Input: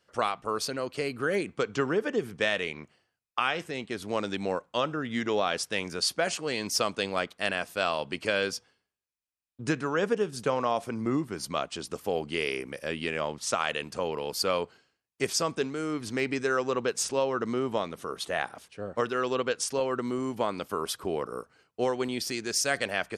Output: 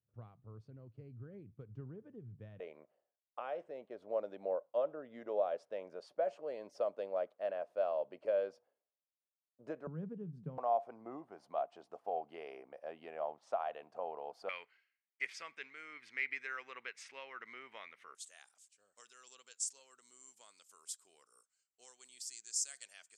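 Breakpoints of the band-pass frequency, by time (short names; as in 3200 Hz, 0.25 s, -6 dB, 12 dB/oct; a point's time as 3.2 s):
band-pass, Q 5.8
110 Hz
from 2.6 s 590 Hz
from 9.87 s 160 Hz
from 10.58 s 710 Hz
from 14.49 s 2100 Hz
from 18.15 s 7500 Hz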